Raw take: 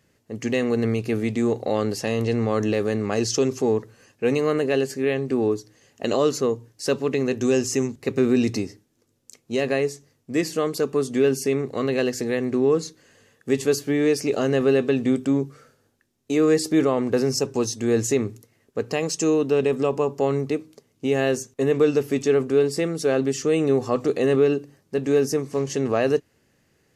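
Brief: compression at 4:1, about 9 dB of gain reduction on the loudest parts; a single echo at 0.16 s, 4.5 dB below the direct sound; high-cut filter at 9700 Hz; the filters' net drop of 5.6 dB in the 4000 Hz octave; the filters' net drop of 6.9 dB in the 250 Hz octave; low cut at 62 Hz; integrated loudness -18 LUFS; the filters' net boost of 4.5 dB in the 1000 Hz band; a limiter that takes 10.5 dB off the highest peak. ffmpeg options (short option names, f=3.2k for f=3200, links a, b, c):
-af "highpass=62,lowpass=9.7k,equalizer=f=250:t=o:g=-9,equalizer=f=1k:t=o:g=7,equalizer=f=4k:t=o:g=-8.5,acompressor=threshold=-27dB:ratio=4,alimiter=limit=-22.5dB:level=0:latency=1,aecho=1:1:160:0.596,volume=14.5dB"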